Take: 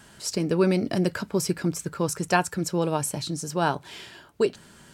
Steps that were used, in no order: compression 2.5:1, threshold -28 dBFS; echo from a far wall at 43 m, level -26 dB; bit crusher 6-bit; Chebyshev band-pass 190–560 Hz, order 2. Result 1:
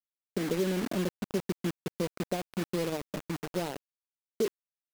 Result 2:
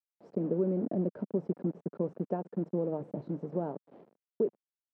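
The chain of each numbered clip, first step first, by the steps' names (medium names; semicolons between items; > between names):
echo from a far wall > compression > Chebyshev band-pass > bit crusher; compression > echo from a far wall > bit crusher > Chebyshev band-pass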